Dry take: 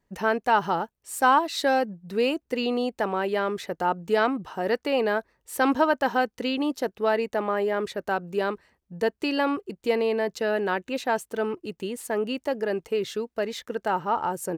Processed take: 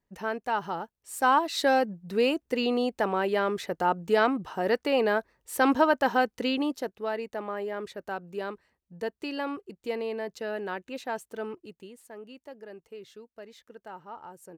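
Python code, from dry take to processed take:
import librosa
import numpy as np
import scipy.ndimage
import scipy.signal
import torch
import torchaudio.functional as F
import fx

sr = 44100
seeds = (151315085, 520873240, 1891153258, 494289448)

y = fx.gain(x, sr, db=fx.line((0.75, -7.5), (1.61, -0.5), (6.54, -0.5), (7.01, -8.0), (11.52, -8.0), (12.04, -17.5)))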